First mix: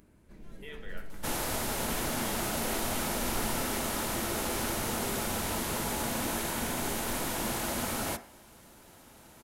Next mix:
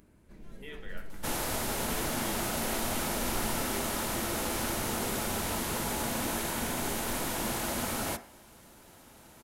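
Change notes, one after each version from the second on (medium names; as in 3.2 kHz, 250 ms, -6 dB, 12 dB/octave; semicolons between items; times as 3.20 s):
speech: remove steep high-pass 210 Hz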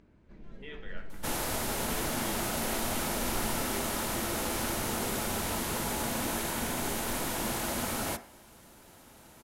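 first sound: add distance through air 140 m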